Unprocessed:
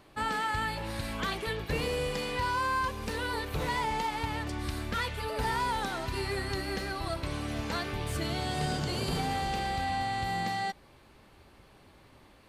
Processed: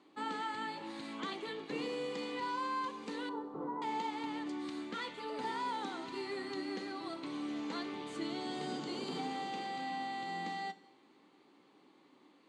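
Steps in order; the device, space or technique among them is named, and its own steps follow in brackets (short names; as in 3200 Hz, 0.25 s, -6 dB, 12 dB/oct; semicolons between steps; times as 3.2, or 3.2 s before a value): 3.29–3.82 steep low-pass 1300 Hz 36 dB/oct; television speaker (speaker cabinet 210–7100 Hz, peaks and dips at 290 Hz +8 dB, 620 Hz -8 dB, 1600 Hz -7 dB, 2600 Hz -4 dB, 5400 Hz -9 dB); two-slope reverb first 0.63 s, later 2.7 s, from -18 dB, DRR 12.5 dB; gain -6 dB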